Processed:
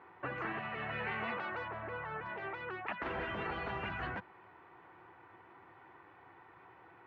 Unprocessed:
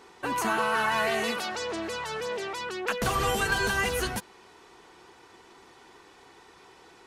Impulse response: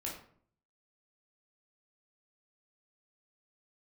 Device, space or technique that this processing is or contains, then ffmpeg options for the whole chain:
bass cabinet: -filter_complex "[0:a]highpass=f=75:w=0.5412,highpass=f=75:w=1.3066,equalizer=f=110:t=q:w=4:g=6,equalizer=f=230:t=q:w=4:g=-9,equalizer=f=430:t=q:w=4:g=-9,lowpass=f=2.1k:w=0.5412,lowpass=f=2.1k:w=1.3066,asettb=1/sr,asplit=3[a][b][c];[a]atrim=end=1.684[d];[b]atrim=start=1.68:end=2.26,asetpts=PTS-STARTPTS,afade=t=in:d=0.004:c=qsin,afade=t=out:st=0.576:d=0.004:c=qsin,aemphasis=mode=reproduction:type=75kf[e];[c]atrim=start=2.256[f];[d][e]acrossfade=d=0.004:c1=hsin:c2=qsin[g];[g][f]acrossfade=d=0.004:c1=qsin:c2=hsin,afftfilt=real='re*lt(hypot(re,im),0.112)':imag='im*lt(hypot(re,im),0.112)':win_size=1024:overlap=0.75,volume=-2.5dB"

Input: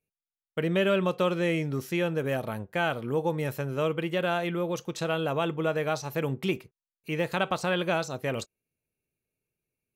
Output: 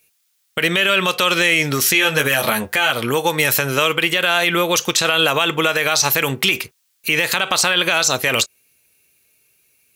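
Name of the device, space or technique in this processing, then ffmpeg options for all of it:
mastering chain: -filter_complex "[0:a]asettb=1/sr,asplit=3[a][b][c];[a]atrim=end=1.934[d];[b]atrim=start=1.93:end=2.91,asetpts=PTS-STARTPTS,afade=t=in:d=0.004:c=qsin,afade=t=out:st=0.976:d=0.004:c=qsin,asplit=2[e][f];[f]adelay=14,volume=-3dB[g];[e][g]amix=inputs=2:normalize=0,atrim=end_sample=43218[h];[c]atrim=start=2.906[i];[d][h]acrossfade=d=0.004:c1=hsin:c2=qsin[j];[j][i]acrossfade=d=0.004:c1=qsin:c2=hsin,highpass=43,equalizer=f=160:t=o:w=0.64:g=-3.5,acrossover=split=1100|2500[k][l][m];[k]acompressor=threshold=-31dB:ratio=4[n];[l]acompressor=threshold=-35dB:ratio=4[o];[m]acompressor=threshold=-39dB:ratio=4[p];[n][o][p]amix=inputs=3:normalize=0,acompressor=threshold=-35dB:ratio=1.5,tiltshelf=f=1.2k:g=-9,alimiter=level_in=26.5dB:limit=-1dB:release=50:level=0:latency=1,volume=-4dB"

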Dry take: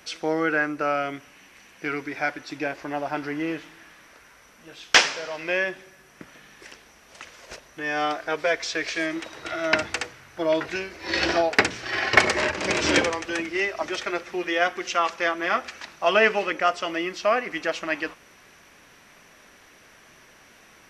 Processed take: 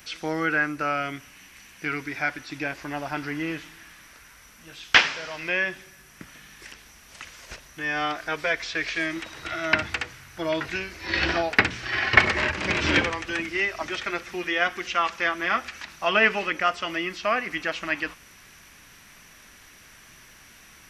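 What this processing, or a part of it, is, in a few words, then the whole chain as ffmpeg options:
smiley-face EQ: -filter_complex "[0:a]acrossover=split=3800[a][b];[b]acompressor=threshold=-50dB:ratio=4:attack=1:release=60[c];[a][c]amix=inputs=2:normalize=0,lowshelf=f=95:g=7,equalizer=f=520:t=o:w=1.8:g=-8.5,highshelf=f=8.8k:g=8.5,volume=2.5dB"

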